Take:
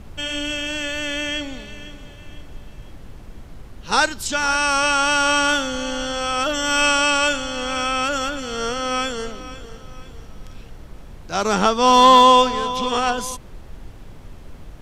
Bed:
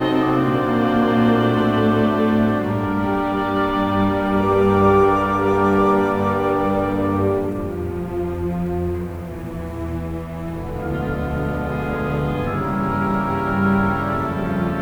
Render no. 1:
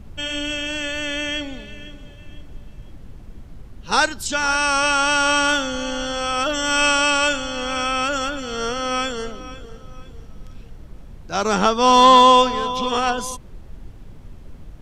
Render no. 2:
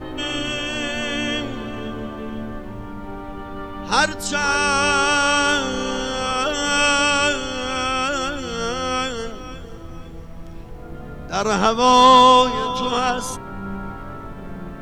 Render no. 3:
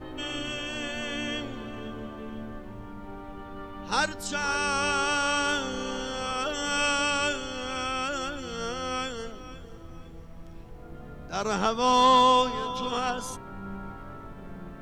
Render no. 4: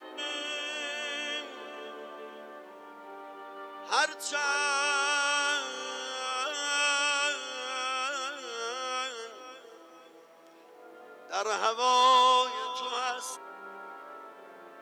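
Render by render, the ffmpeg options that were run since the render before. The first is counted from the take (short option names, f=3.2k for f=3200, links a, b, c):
-af "afftdn=nr=6:nf=-40"
-filter_complex "[1:a]volume=-13.5dB[a];[0:a][a]amix=inputs=2:normalize=0"
-af "volume=-8.5dB"
-af "highpass=f=390:w=0.5412,highpass=f=390:w=1.3066,adynamicequalizer=threshold=0.00891:dfrequency=510:dqfactor=0.8:tfrequency=510:tqfactor=0.8:attack=5:release=100:ratio=0.375:range=3:mode=cutabove:tftype=bell"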